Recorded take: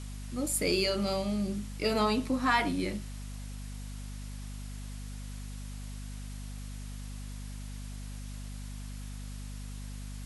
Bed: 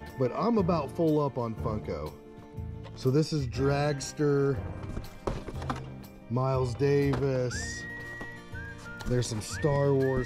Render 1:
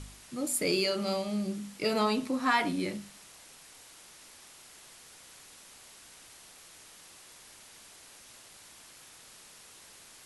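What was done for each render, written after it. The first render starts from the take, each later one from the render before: de-hum 50 Hz, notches 5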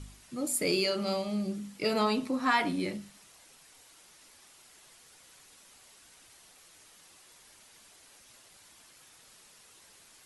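denoiser 6 dB, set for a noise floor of -54 dBFS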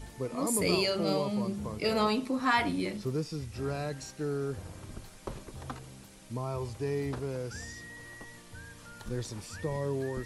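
add bed -7.5 dB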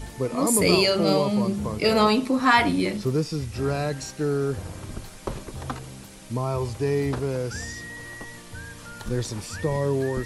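gain +8.5 dB

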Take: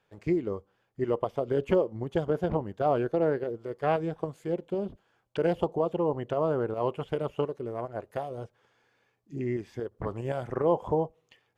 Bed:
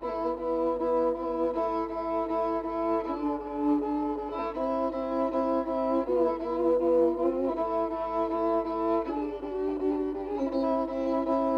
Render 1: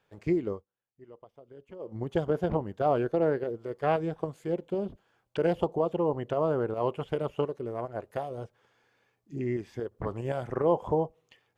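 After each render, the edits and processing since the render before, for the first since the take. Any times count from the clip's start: 0.5–1.94 dip -22.5 dB, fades 0.15 s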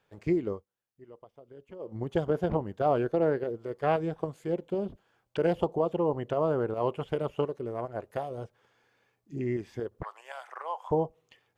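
10.03–10.91 HPF 860 Hz 24 dB/oct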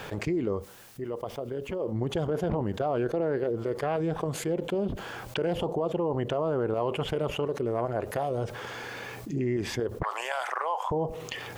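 limiter -21.5 dBFS, peak gain reduction 9 dB; fast leveller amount 70%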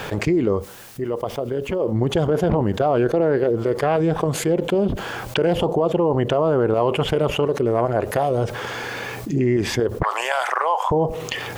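gain +9.5 dB

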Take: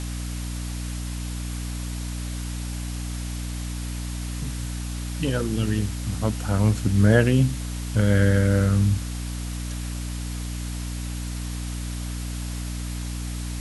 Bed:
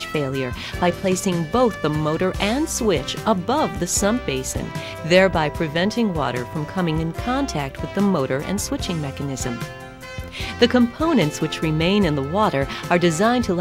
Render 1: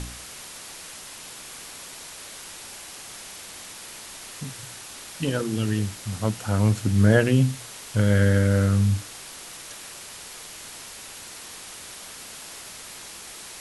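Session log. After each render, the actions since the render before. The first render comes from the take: de-hum 60 Hz, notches 5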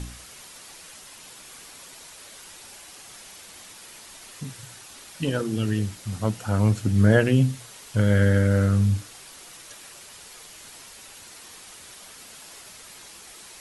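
denoiser 6 dB, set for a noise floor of -41 dBFS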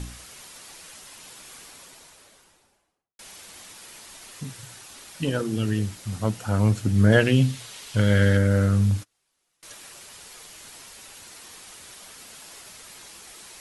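1.52–3.19 studio fade out; 7.12–8.37 bell 3400 Hz +6.5 dB 1.6 oct; 8.91–9.63 gate -39 dBFS, range -30 dB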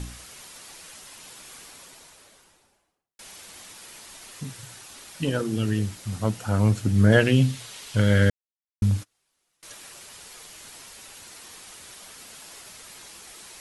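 8.3–8.82 mute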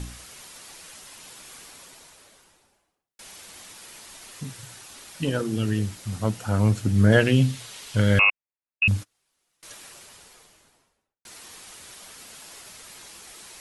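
8.19–8.88 inverted band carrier 2700 Hz; 9.74–11.25 studio fade out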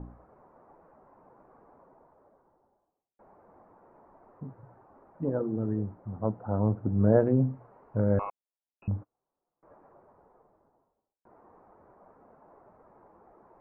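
inverse Chebyshev low-pass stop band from 3200 Hz, stop band 60 dB; low shelf 210 Hz -9.5 dB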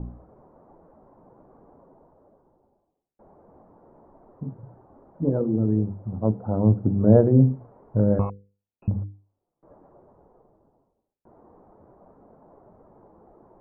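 tilt shelf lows +10 dB; notches 50/100/150/200/250/300/350/400/450/500 Hz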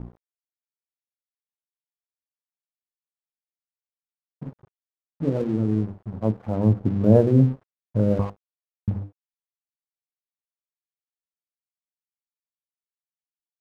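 crossover distortion -40.5 dBFS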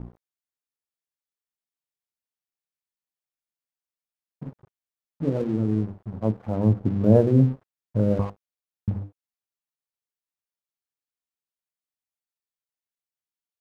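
gain -1 dB

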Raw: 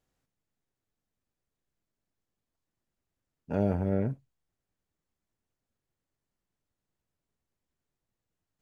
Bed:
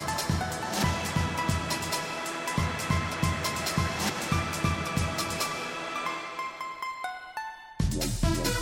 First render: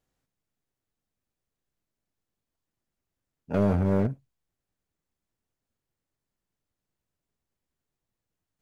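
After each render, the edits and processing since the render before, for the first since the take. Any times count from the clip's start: 3.54–4.07 sample leveller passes 2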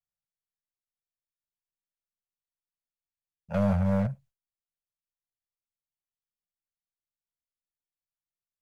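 elliptic band-stop 200–530 Hz; gate with hold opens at -57 dBFS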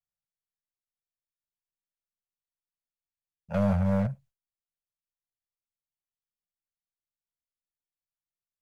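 nothing audible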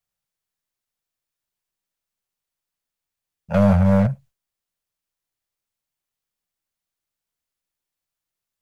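gain +9.5 dB

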